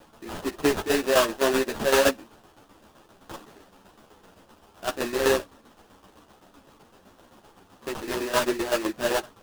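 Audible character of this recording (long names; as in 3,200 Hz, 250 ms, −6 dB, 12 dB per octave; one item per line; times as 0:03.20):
a quantiser's noise floor 10 bits, dither triangular
tremolo saw down 7.8 Hz, depth 70%
aliases and images of a low sample rate 2,200 Hz, jitter 20%
a shimmering, thickened sound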